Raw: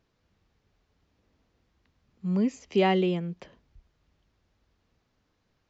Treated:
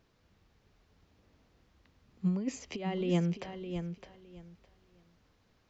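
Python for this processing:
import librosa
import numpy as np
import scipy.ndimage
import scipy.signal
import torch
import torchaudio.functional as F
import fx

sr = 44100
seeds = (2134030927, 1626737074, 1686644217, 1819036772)

p1 = fx.over_compress(x, sr, threshold_db=-28.0, ratio=-0.5)
p2 = p1 + fx.echo_feedback(p1, sr, ms=611, feedback_pct=19, wet_db=-8.5, dry=0)
y = F.gain(torch.from_numpy(p2), -1.5).numpy()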